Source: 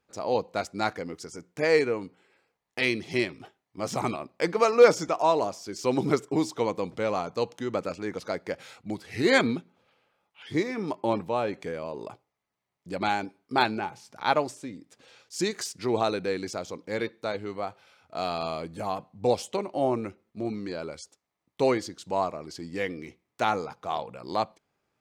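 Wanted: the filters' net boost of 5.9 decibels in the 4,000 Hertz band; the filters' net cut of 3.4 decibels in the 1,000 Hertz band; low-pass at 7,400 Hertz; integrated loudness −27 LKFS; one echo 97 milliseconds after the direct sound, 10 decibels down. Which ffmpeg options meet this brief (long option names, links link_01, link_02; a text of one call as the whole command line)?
ffmpeg -i in.wav -af "lowpass=7400,equalizer=frequency=1000:width_type=o:gain=-5,equalizer=frequency=4000:width_type=o:gain=7.5,aecho=1:1:97:0.316,volume=1.5dB" out.wav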